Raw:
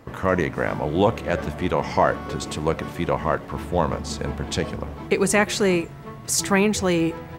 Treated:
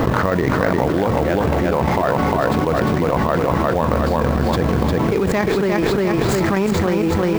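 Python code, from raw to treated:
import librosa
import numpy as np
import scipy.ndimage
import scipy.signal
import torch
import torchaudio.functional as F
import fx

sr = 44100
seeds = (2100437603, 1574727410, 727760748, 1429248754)

y = scipy.ndimage.median_filter(x, 15, mode='constant')
y = fx.chopper(y, sr, hz=6.4, depth_pct=60, duty_pct=65)
y = fx.hum_notches(y, sr, base_hz=50, count=3)
y = fx.quant_float(y, sr, bits=2)
y = fx.peak_eq(y, sr, hz=10000.0, db=-8.0, octaves=1.8)
y = fx.echo_feedback(y, sr, ms=353, feedback_pct=32, wet_db=-4)
y = fx.env_flatten(y, sr, amount_pct=100)
y = F.gain(torch.from_numpy(y), -1.5).numpy()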